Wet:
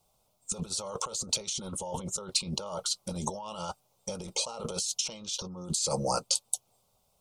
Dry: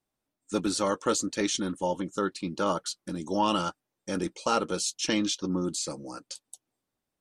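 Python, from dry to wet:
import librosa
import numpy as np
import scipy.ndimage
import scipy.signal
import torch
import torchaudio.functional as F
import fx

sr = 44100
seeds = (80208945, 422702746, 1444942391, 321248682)

y = fx.over_compress(x, sr, threshold_db=-39.0, ratio=-1.0)
y = fx.fixed_phaser(y, sr, hz=720.0, stages=4)
y = y * librosa.db_to_amplitude(8.0)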